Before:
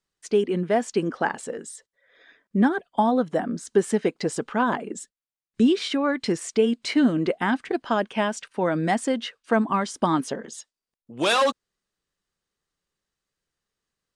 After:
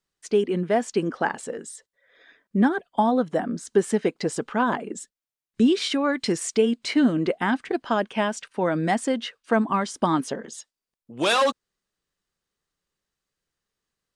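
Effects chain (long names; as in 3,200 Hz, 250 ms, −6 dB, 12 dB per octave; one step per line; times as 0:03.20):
0:05.72–0:06.62: high-shelf EQ 4,100 Hz +6 dB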